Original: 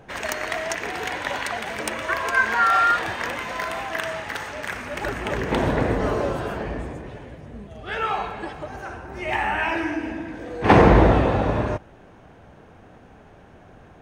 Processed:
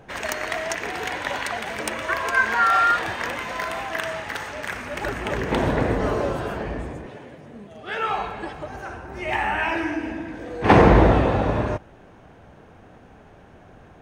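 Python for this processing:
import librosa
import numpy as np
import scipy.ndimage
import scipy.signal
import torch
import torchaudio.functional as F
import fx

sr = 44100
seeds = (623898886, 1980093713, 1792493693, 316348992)

y = fx.highpass(x, sr, hz=160.0, slope=12, at=(7.06, 8.08))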